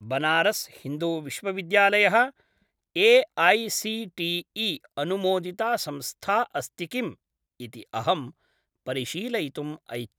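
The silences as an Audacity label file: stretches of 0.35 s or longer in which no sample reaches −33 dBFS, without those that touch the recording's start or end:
2.280000	2.960000	silence
7.120000	7.600000	silence
8.280000	8.880000	silence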